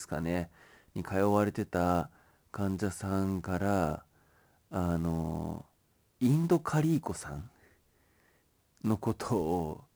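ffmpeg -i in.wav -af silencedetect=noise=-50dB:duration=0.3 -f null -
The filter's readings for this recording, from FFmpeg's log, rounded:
silence_start: 2.07
silence_end: 2.54 | silence_duration: 0.47
silence_start: 4.03
silence_end: 4.71 | silence_duration: 0.68
silence_start: 5.63
silence_end: 6.21 | silence_duration: 0.58
silence_start: 7.67
silence_end: 8.77 | silence_duration: 1.11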